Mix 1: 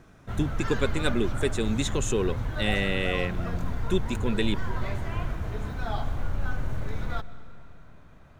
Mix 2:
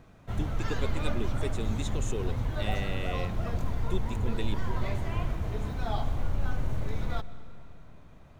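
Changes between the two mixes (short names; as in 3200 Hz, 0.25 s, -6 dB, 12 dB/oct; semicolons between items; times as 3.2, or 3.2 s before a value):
speech -9.0 dB; master: add bell 1500 Hz -6 dB 0.58 oct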